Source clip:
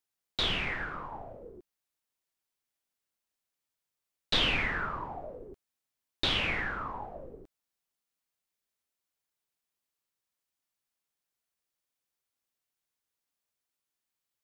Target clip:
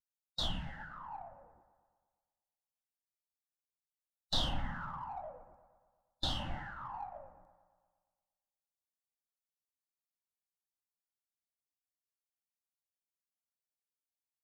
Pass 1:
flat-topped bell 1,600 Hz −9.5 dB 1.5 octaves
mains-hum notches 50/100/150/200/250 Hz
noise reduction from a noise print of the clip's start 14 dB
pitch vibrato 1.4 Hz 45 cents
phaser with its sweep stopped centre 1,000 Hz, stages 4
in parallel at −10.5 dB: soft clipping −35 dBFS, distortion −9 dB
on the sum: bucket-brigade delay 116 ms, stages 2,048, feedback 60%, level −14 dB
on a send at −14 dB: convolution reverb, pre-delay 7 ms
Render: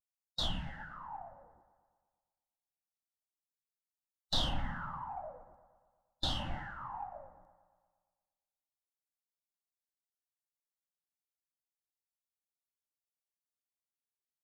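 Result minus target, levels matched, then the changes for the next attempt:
soft clipping: distortion −7 dB
change: soft clipping −47 dBFS, distortion −2 dB

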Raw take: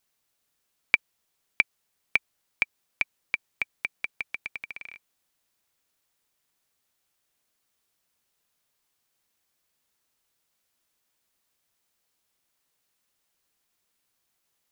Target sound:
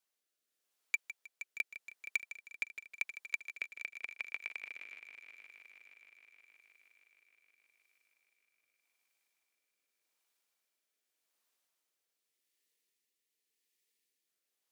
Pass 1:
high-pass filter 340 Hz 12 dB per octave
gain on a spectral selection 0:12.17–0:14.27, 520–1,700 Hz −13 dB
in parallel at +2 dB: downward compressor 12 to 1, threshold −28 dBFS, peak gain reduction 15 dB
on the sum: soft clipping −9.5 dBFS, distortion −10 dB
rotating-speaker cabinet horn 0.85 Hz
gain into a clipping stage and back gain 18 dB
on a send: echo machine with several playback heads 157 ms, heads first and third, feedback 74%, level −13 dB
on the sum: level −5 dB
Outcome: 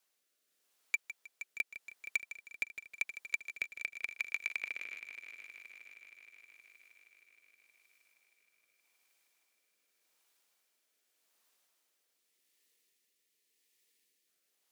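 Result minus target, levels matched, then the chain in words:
downward compressor: peak gain reduction +15 dB
high-pass filter 340 Hz 12 dB per octave
gain on a spectral selection 0:12.17–0:14.27, 520–1,700 Hz −13 dB
soft clipping −9.5 dBFS, distortion −14 dB
rotating-speaker cabinet horn 0.85 Hz
gain into a clipping stage and back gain 18 dB
on a send: echo machine with several playback heads 157 ms, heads first and third, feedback 74%, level −13 dB
on the sum: level −5 dB

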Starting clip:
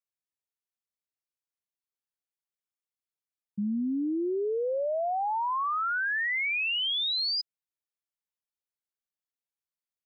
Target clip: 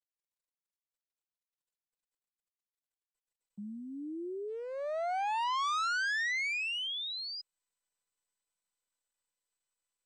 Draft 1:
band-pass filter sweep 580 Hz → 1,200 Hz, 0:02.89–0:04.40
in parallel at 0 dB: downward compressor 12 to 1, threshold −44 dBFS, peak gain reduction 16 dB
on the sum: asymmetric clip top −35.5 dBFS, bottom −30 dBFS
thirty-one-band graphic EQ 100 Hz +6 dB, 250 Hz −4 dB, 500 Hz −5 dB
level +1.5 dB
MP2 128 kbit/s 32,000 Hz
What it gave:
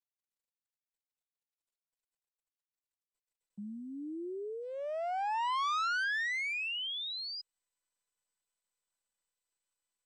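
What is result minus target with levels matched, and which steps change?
downward compressor: peak gain reduction +8.5 dB
change: downward compressor 12 to 1, threshold −34.5 dBFS, peak gain reduction 7 dB

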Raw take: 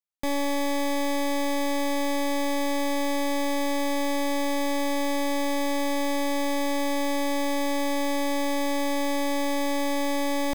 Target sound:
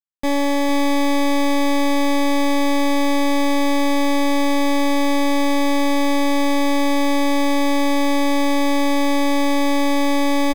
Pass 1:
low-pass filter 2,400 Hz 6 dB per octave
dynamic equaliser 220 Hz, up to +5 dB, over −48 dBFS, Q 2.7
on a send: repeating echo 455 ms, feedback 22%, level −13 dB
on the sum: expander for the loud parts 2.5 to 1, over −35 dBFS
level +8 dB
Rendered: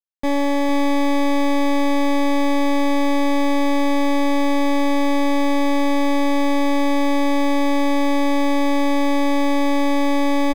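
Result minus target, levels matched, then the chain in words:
8,000 Hz band −5.5 dB
low-pass filter 6,000 Hz 6 dB per octave
dynamic equaliser 220 Hz, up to +5 dB, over −48 dBFS, Q 2.7
on a send: repeating echo 455 ms, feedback 22%, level −13 dB
on the sum: expander for the loud parts 2.5 to 1, over −35 dBFS
level +8 dB

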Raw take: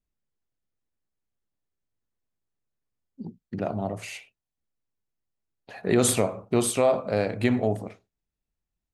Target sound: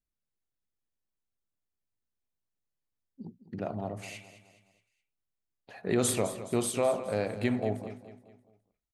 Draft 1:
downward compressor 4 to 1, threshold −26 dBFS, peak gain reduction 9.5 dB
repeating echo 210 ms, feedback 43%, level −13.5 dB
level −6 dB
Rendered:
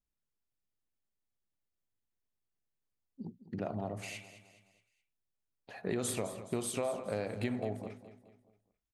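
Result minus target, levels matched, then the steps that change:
downward compressor: peak gain reduction +9.5 dB
remove: downward compressor 4 to 1, threshold −26 dBFS, peak gain reduction 9.5 dB

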